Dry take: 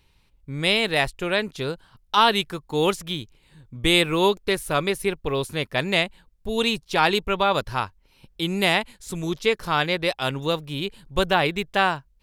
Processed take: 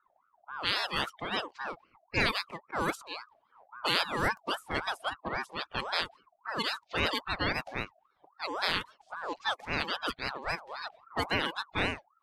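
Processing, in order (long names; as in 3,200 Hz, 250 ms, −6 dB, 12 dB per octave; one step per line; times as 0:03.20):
spectral magnitudes quantised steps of 30 dB
low-pass that shuts in the quiet parts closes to 970 Hz, open at −18 dBFS
ring modulator whose carrier an LFO sweeps 1,000 Hz, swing 35%, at 3.7 Hz
level −6.5 dB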